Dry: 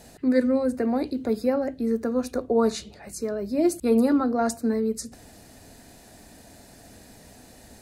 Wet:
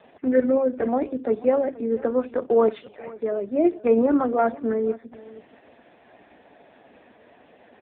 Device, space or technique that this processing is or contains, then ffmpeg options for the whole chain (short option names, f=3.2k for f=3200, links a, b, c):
satellite phone: -af "highpass=350,lowpass=3k,aecho=1:1:482:0.106,volume=5.5dB" -ar 8000 -c:a libopencore_amrnb -b:a 4750